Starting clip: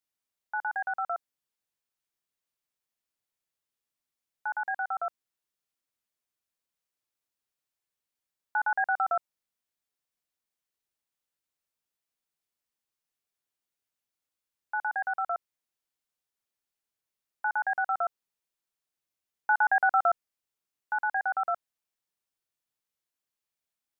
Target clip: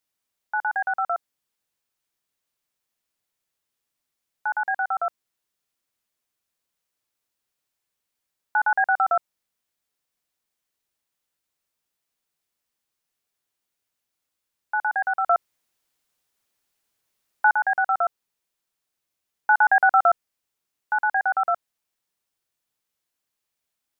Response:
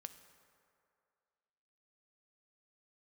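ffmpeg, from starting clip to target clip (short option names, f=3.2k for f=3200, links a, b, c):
-filter_complex "[0:a]asettb=1/sr,asplit=3[a][b][c];[a]atrim=end=15.254[d];[b]atrim=start=15.25:end=17.52,asetpts=PTS-STARTPTS,afade=t=in:d=0.004:c=qsin,afade=t=out:st=2.266:d=0.004:c=qsin,acontrast=38[e];[c]atrim=start=17.516[f];[d][e]acrossfade=d=0.004:c1=hsin:c2=qsin[g];[g][f]acrossfade=d=0.004:c1=qsin:c2=hsin,volume=6.5dB"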